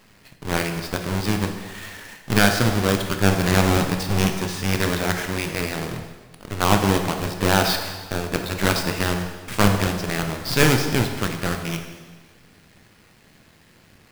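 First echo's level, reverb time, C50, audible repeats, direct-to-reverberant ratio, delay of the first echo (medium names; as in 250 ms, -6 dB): no echo, 1.4 s, 6.5 dB, no echo, 4.5 dB, no echo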